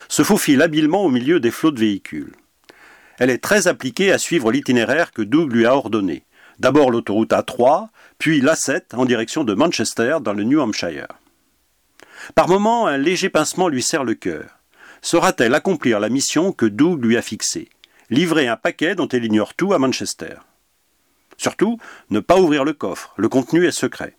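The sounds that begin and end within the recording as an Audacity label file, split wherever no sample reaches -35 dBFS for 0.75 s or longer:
12.000000	20.410000	sound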